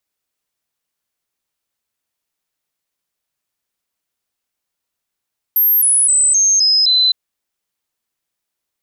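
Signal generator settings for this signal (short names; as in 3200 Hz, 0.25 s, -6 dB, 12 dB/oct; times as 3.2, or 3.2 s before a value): stepped sine 12800 Hz down, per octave 3, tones 6, 0.26 s, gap 0.00 s -9.5 dBFS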